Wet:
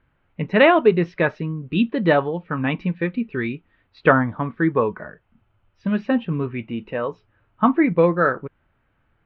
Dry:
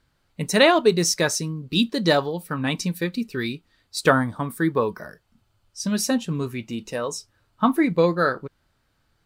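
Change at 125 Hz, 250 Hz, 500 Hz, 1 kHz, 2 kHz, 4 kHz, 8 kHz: +2.5 dB, +2.5 dB, +2.5 dB, +2.5 dB, +2.5 dB, −9.0 dB, below −40 dB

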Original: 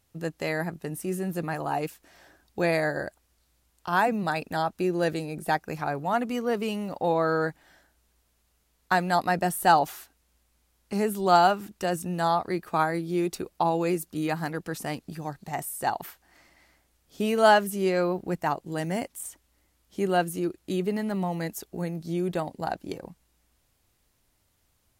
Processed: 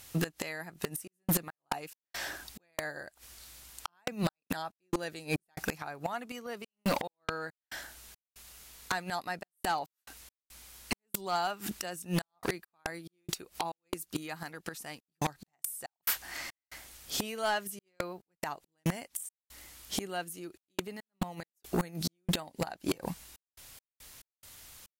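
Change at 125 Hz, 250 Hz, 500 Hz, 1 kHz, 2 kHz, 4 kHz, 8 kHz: −6.0, −8.5, −12.5, −12.5, −7.5, −2.0, 0.0 decibels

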